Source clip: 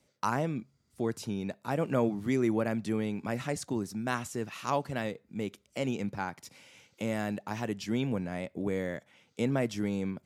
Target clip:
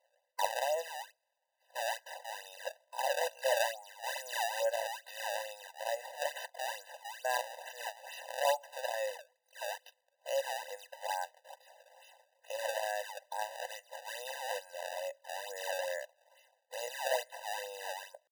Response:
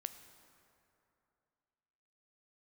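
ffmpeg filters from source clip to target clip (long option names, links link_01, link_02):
-af "atempo=0.56,acrusher=samples=24:mix=1:aa=0.000001:lfo=1:lforange=38.4:lforate=2.3,afftfilt=real='re*eq(mod(floor(b*sr/1024/510),2),1)':imag='im*eq(mod(floor(b*sr/1024/510),2),1)':win_size=1024:overlap=0.75,volume=1.5dB"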